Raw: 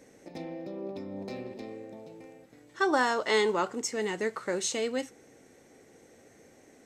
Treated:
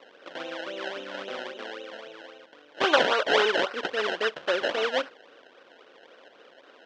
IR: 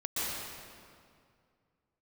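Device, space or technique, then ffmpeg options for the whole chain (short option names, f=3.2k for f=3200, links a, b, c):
circuit-bent sampling toy: -af "acrusher=samples=26:mix=1:aa=0.000001:lfo=1:lforange=26:lforate=3.7,highpass=540,equalizer=f=550:t=q:w=4:g=4,equalizer=f=850:t=q:w=4:g=-4,equalizer=f=1.5k:t=q:w=4:g=7,equalizer=f=2.1k:t=q:w=4:g=-3,equalizer=f=3.1k:t=q:w=4:g=6,equalizer=f=4.5k:t=q:w=4:g=-3,lowpass=f=4.9k:w=0.5412,lowpass=f=4.9k:w=1.3066,volume=6.5dB"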